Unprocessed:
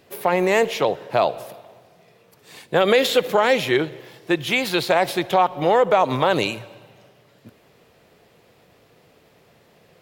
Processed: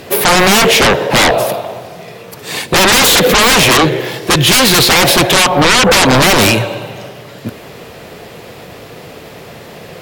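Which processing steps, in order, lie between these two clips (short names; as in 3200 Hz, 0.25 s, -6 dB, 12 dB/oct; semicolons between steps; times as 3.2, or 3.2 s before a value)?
sine folder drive 19 dB, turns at -5 dBFS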